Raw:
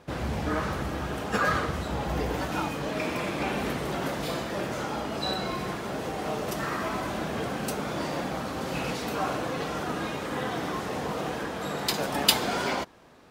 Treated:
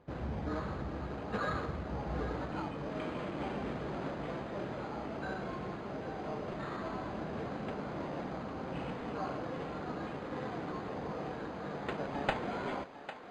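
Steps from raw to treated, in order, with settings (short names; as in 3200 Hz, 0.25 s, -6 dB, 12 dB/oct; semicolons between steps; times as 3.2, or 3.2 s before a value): careless resampling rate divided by 8×, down none, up hold; tape spacing loss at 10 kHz 30 dB; on a send: thinning echo 0.801 s, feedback 71%, high-pass 390 Hz, level -11 dB; on the sum: gain -6.5 dB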